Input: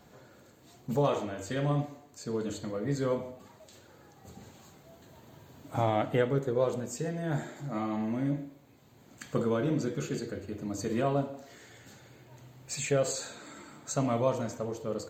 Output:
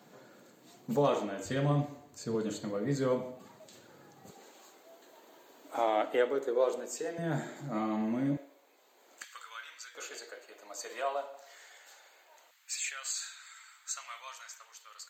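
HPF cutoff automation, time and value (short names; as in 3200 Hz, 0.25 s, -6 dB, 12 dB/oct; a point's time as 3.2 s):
HPF 24 dB/oct
160 Hz
from 1.45 s 57 Hz
from 2.35 s 130 Hz
from 4.31 s 330 Hz
from 7.18 s 150 Hz
from 8.37 s 420 Hz
from 9.24 s 1400 Hz
from 9.95 s 610 Hz
from 12.51 s 1400 Hz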